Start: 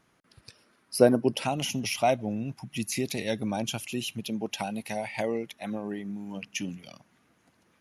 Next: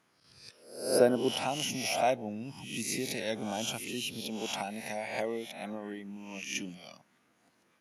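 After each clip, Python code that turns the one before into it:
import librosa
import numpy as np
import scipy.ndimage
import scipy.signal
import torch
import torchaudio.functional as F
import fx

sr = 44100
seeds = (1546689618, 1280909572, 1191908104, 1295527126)

y = fx.spec_swells(x, sr, rise_s=0.6)
y = fx.highpass(y, sr, hz=220.0, slope=6)
y = F.gain(torch.from_numpy(y), -4.5).numpy()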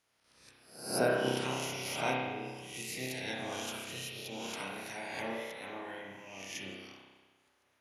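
y = fx.spec_clip(x, sr, under_db=16)
y = fx.rev_spring(y, sr, rt60_s=1.3, pass_ms=(31,), chirp_ms=65, drr_db=-3.0)
y = F.gain(torch.from_numpy(y), -8.0).numpy()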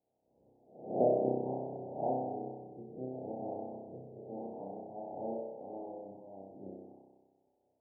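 y = scipy.signal.sosfilt(scipy.signal.butter(12, 810.0, 'lowpass', fs=sr, output='sos'), x)
y = fx.low_shelf(y, sr, hz=130.0, db=-11.5)
y = F.gain(torch.from_numpy(y), 2.5).numpy()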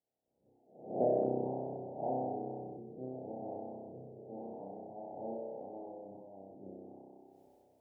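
y = fx.noise_reduce_blind(x, sr, reduce_db=7)
y = fx.sustainer(y, sr, db_per_s=20.0)
y = F.gain(torch.from_numpy(y), -3.0).numpy()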